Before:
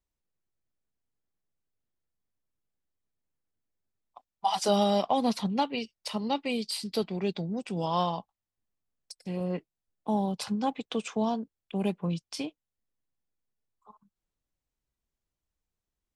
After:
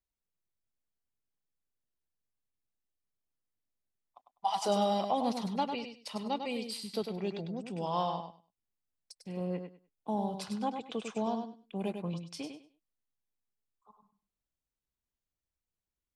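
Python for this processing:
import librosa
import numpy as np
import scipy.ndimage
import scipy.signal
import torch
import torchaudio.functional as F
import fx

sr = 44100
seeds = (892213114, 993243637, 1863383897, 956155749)

y = fx.echo_feedback(x, sr, ms=100, feedback_pct=21, wet_db=-7)
y = fx.dynamic_eq(y, sr, hz=740.0, q=0.71, threshold_db=-37.0, ratio=4.0, max_db=3)
y = y * 10.0 ** (-7.0 / 20.0)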